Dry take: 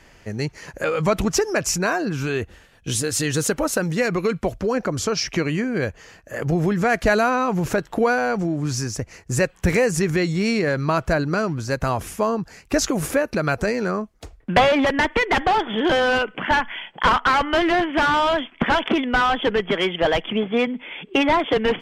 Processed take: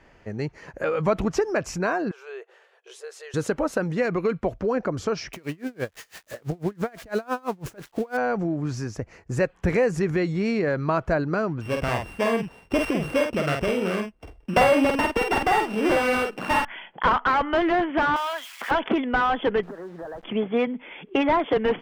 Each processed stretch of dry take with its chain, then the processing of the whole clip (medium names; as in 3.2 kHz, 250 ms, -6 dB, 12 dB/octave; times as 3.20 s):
2.11–3.34 s: compression 2:1, threshold -36 dBFS + brick-wall FIR high-pass 360 Hz
5.33–8.17 s: zero-crossing glitches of -16.5 dBFS + logarithmic tremolo 6 Hz, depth 30 dB
11.61–16.65 s: sorted samples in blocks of 16 samples + doubling 48 ms -4 dB
18.16–18.71 s: zero-crossing glitches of -19 dBFS + Bessel high-pass 1.3 kHz
19.63–20.24 s: steep low-pass 1.8 kHz 96 dB/octave + compression, threshold -32 dBFS + word length cut 8-bit, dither none
whole clip: low-pass 1.2 kHz 6 dB/octave; bass shelf 250 Hz -5.5 dB